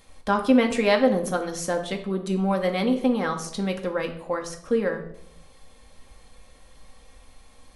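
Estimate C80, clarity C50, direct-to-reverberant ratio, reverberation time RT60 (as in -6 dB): 14.0 dB, 10.5 dB, 3.0 dB, 0.75 s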